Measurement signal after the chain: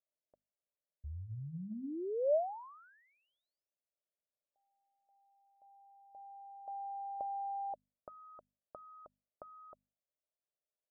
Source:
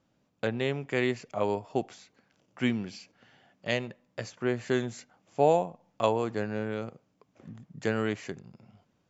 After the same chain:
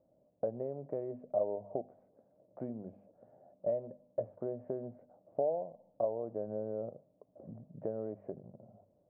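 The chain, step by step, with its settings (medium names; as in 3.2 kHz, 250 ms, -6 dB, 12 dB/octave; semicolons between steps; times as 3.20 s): hum notches 50/100/150/200/250 Hz; compression 6:1, threshold -36 dBFS; four-pole ladder low-pass 650 Hz, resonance 75%; trim +8.5 dB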